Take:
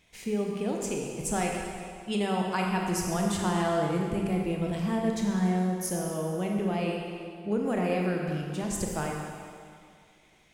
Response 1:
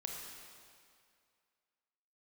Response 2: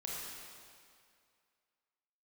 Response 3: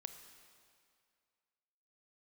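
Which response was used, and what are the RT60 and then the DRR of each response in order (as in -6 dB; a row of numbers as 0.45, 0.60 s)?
1; 2.2, 2.2, 2.2 s; -0.5, -5.0, 7.5 dB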